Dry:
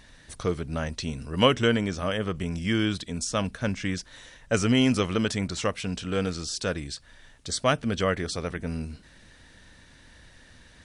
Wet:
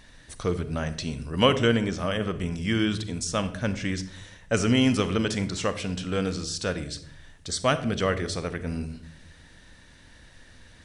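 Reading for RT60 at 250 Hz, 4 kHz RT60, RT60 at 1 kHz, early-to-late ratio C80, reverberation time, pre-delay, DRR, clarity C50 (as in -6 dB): 1.1 s, 0.40 s, 0.55 s, 16.5 dB, 0.65 s, 33 ms, 11.5 dB, 13.5 dB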